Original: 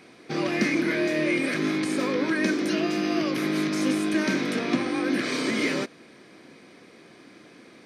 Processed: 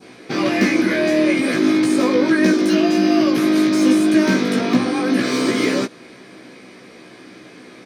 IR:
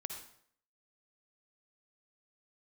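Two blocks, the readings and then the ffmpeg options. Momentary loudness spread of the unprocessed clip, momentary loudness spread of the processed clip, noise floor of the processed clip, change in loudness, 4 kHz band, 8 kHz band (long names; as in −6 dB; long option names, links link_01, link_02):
2 LU, 4 LU, −43 dBFS, +8.5 dB, +6.5 dB, +7.0 dB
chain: -filter_complex "[0:a]adynamicequalizer=threshold=0.01:dfrequency=2100:dqfactor=1.3:tfrequency=2100:tqfactor=1.3:attack=5:release=100:ratio=0.375:range=2.5:mode=cutabove:tftype=bell,acrossover=split=2900[link_01][link_02];[link_02]asoftclip=type=tanh:threshold=-33dB[link_03];[link_01][link_03]amix=inputs=2:normalize=0,asplit=2[link_04][link_05];[link_05]adelay=16,volume=-3dB[link_06];[link_04][link_06]amix=inputs=2:normalize=0,volume=7dB"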